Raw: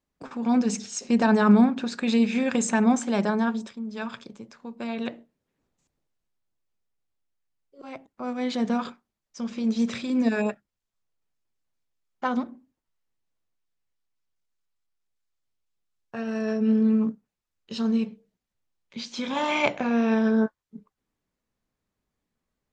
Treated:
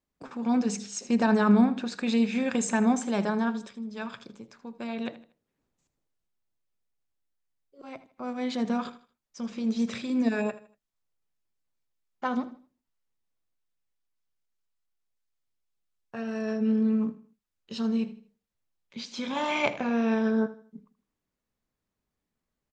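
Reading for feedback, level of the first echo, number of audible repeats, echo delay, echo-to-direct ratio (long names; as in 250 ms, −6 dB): 35%, −16.0 dB, 3, 79 ms, −15.5 dB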